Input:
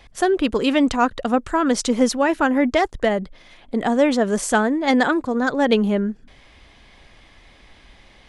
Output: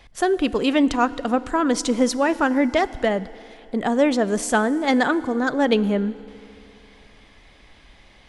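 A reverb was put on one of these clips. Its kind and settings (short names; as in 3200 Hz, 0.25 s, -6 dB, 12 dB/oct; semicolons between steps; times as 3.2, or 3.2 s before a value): FDN reverb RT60 2.9 s, high-frequency decay 0.9×, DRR 16.5 dB; gain -1.5 dB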